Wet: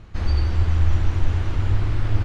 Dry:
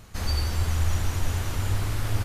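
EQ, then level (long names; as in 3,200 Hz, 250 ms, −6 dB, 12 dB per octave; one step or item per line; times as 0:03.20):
low-pass filter 3,400 Hz 12 dB per octave
low-shelf EQ 130 Hz +8 dB
parametric band 330 Hz +6.5 dB 0.32 octaves
0.0 dB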